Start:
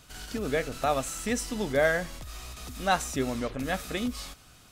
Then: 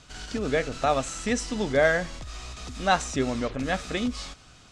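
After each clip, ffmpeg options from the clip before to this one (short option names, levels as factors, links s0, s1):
-af "lowpass=f=7700:w=0.5412,lowpass=f=7700:w=1.3066,volume=1.41"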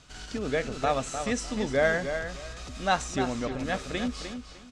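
-filter_complex "[0:a]asplit=2[s0][s1];[s1]adelay=303,lowpass=f=4800:p=1,volume=0.398,asplit=2[s2][s3];[s3]adelay=303,lowpass=f=4800:p=1,volume=0.23,asplit=2[s4][s5];[s5]adelay=303,lowpass=f=4800:p=1,volume=0.23[s6];[s0][s2][s4][s6]amix=inputs=4:normalize=0,volume=0.708"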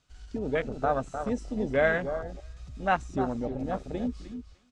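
-af "afwtdn=0.0282"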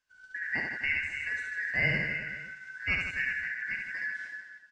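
-af "afftfilt=real='real(if(lt(b,272),68*(eq(floor(b/68),0)*1+eq(floor(b/68),1)*0+eq(floor(b/68),2)*3+eq(floor(b/68),3)*2)+mod(b,68),b),0)':imag='imag(if(lt(b,272),68*(eq(floor(b/68),0)*1+eq(floor(b/68),1)*0+eq(floor(b/68),2)*3+eq(floor(b/68),3)*2)+mod(b,68),b),0)':win_size=2048:overlap=0.75,agate=range=0.447:threshold=0.00631:ratio=16:detection=peak,aecho=1:1:70|154|254.8|375.8|520.9:0.631|0.398|0.251|0.158|0.1,volume=0.531"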